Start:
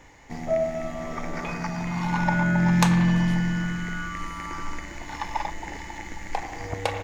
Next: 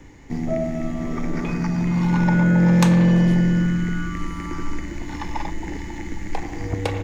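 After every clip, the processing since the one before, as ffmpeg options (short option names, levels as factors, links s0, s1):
-filter_complex "[0:a]lowshelf=f=460:t=q:w=1.5:g=9,acrossover=split=300|520|5400[s0][s1][s2][s3];[s0]asoftclip=type=tanh:threshold=0.188[s4];[s4][s1][s2][s3]amix=inputs=4:normalize=0"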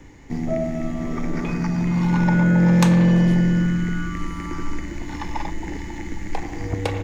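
-af anull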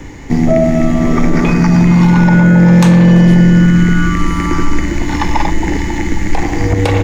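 -af "alimiter=level_in=6.31:limit=0.891:release=50:level=0:latency=1,volume=0.891"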